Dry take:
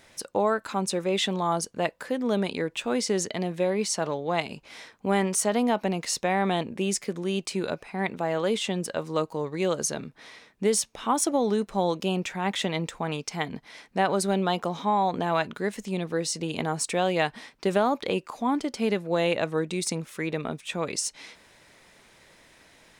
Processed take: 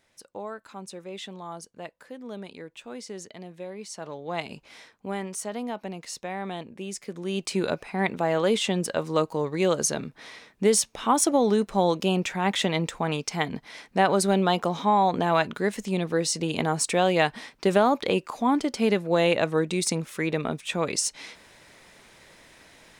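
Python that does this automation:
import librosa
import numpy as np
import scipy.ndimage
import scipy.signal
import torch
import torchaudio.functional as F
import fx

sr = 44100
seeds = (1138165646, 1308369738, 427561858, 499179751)

y = fx.gain(x, sr, db=fx.line((3.84, -12.5), (4.54, -1.5), (5.21, -8.5), (6.92, -8.5), (7.57, 3.0)))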